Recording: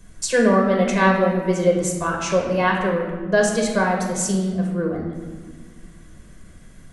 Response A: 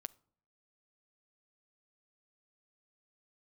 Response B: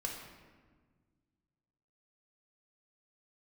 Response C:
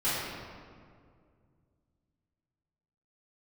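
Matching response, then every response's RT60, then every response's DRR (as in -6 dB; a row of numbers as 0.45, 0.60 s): B; 0.60, 1.5, 2.1 s; 17.5, 0.0, -13.5 dB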